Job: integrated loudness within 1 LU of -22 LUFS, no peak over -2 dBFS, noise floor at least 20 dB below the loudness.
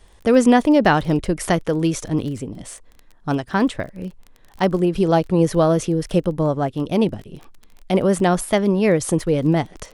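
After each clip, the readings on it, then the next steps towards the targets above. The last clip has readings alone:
tick rate 19 per s; loudness -19.0 LUFS; peak level -2.5 dBFS; loudness target -22.0 LUFS
-> de-click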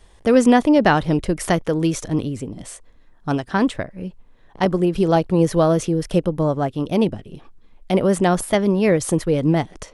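tick rate 0 per s; loudness -19.0 LUFS; peak level -2.5 dBFS; loudness target -22.0 LUFS
-> trim -3 dB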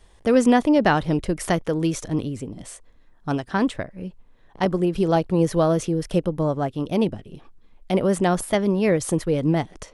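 loudness -22.0 LUFS; peak level -5.5 dBFS; noise floor -53 dBFS

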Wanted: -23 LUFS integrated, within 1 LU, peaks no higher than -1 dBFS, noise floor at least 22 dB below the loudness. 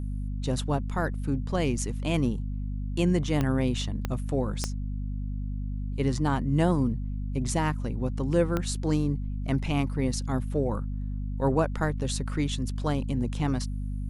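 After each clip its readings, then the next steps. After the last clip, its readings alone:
clicks found 4; hum 50 Hz; highest harmonic 250 Hz; hum level -29 dBFS; loudness -29.0 LUFS; peak level -11.5 dBFS; loudness target -23.0 LUFS
-> de-click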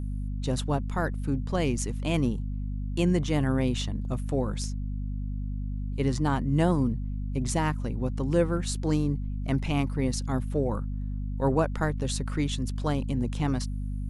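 clicks found 0; hum 50 Hz; highest harmonic 250 Hz; hum level -29 dBFS
-> hum notches 50/100/150/200/250 Hz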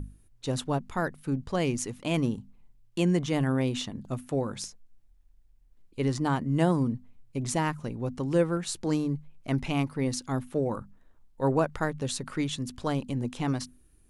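hum not found; loudness -30.0 LUFS; peak level -11.5 dBFS; loudness target -23.0 LUFS
-> trim +7 dB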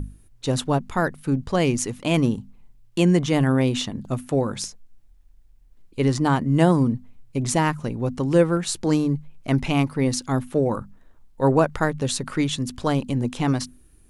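loudness -23.0 LUFS; peak level -4.5 dBFS; noise floor -53 dBFS

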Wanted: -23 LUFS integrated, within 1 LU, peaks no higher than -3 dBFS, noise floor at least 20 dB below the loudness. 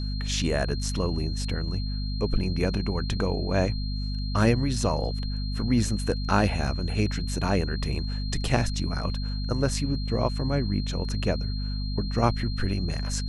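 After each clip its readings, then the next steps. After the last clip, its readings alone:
hum 50 Hz; highest harmonic 250 Hz; hum level -27 dBFS; steady tone 4.2 kHz; tone level -39 dBFS; loudness -27.5 LUFS; peak level -6.0 dBFS; loudness target -23.0 LUFS
-> de-hum 50 Hz, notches 5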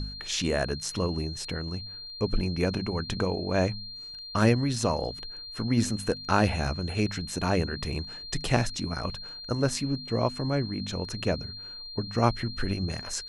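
hum not found; steady tone 4.2 kHz; tone level -39 dBFS
-> band-stop 4.2 kHz, Q 30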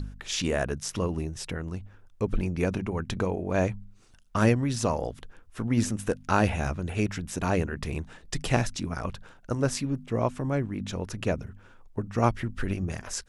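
steady tone not found; loudness -29.5 LUFS; peak level -6.0 dBFS; loudness target -23.0 LUFS
-> trim +6.5 dB; peak limiter -3 dBFS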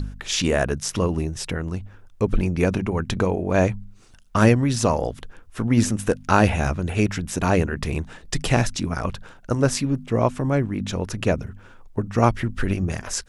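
loudness -23.0 LUFS; peak level -3.0 dBFS; noise floor -48 dBFS

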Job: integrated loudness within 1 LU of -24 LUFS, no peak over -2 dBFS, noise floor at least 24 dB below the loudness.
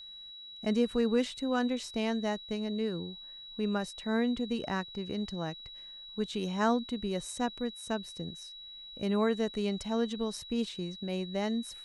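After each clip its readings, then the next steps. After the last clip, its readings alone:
steady tone 3.9 kHz; tone level -45 dBFS; loudness -33.0 LUFS; peak level -16.5 dBFS; loudness target -24.0 LUFS
-> band-stop 3.9 kHz, Q 30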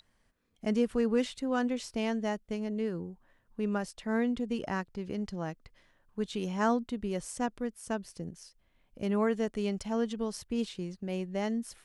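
steady tone not found; loudness -33.5 LUFS; peak level -16.5 dBFS; loudness target -24.0 LUFS
-> trim +9.5 dB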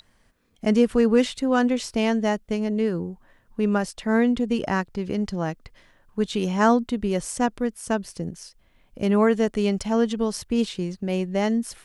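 loudness -24.0 LUFS; peak level -7.0 dBFS; noise floor -62 dBFS

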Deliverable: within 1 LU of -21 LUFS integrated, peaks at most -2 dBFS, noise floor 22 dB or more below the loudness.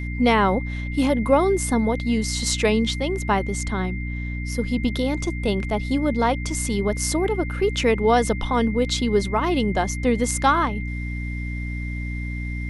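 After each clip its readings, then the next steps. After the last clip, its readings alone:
hum 60 Hz; highest harmonic 300 Hz; hum level -26 dBFS; steady tone 2.1 kHz; tone level -35 dBFS; loudness -22.5 LUFS; peak level -5.0 dBFS; loudness target -21.0 LUFS
-> hum notches 60/120/180/240/300 Hz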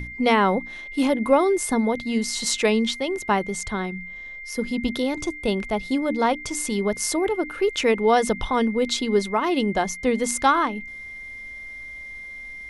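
hum not found; steady tone 2.1 kHz; tone level -35 dBFS
-> band-stop 2.1 kHz, Q 30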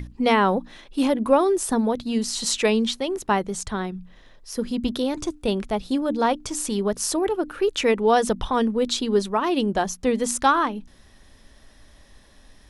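steady tone not found; loudness -23.0 LUFS; peak level -5.5 dBFS; loudness target -21.0 LUFS
-> trim +2 dB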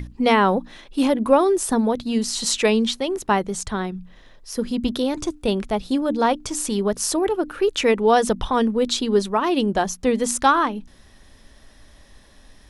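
loudness -21.0 LUFS; peak level -3.5 dBFS; noise floor -50 dBFS

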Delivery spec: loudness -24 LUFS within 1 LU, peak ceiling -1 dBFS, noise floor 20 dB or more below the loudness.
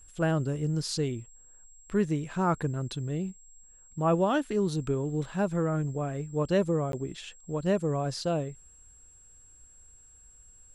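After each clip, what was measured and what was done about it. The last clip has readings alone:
dropouts 1; longest dropout 12 ms; steady tone 7.6 kHz; tone level -54 dBFS; loudness -30.0 LUFS; peak level -15.0 dBFS; loudness target -24.0 LUFS
-> interpolate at 6.92 s, 12 ms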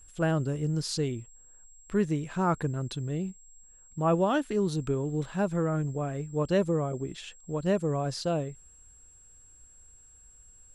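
dropouts 0; steady tone 7.6 kHz; tone level -54 dBFS
-> band-stop 7.6 kHz, Q 30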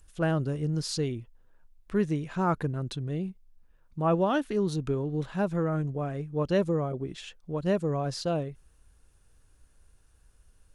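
steady tone not found; loudness -30.0 LUFS; peak level -15.0 dBFS; loudness target -24.0 LUFS
-> trim +6 dB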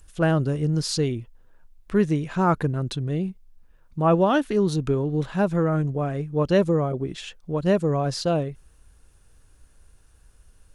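loudness -24.0 LUFS; peak level -9.0 dBFS; noise floor -56 dBFS

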